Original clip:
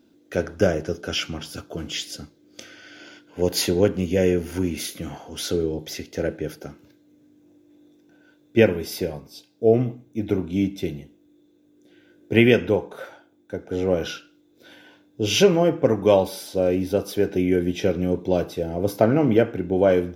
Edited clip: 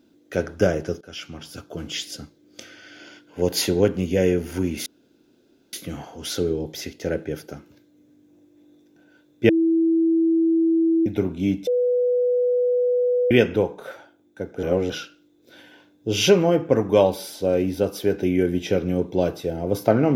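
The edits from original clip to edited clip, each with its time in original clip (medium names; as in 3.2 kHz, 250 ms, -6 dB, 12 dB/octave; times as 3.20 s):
1.01–2.18 s: fade in equal-power, from -18 dB
4.86 s: insert room tone 0.87 s
8.62–10.19 s: bleep 328 Hz -15.5 dBFS
10.80–12.44 s: bleep 493 Hz -17 dBFS
13.76–14.03 s: reverse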